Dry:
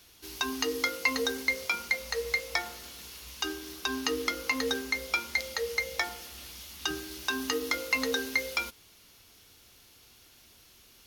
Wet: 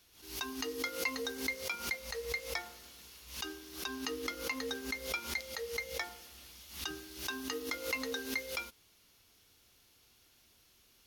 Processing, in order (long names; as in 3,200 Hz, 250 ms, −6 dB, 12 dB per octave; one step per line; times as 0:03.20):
background raised ahead of every attack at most 100 dB per second
level −8.5 dB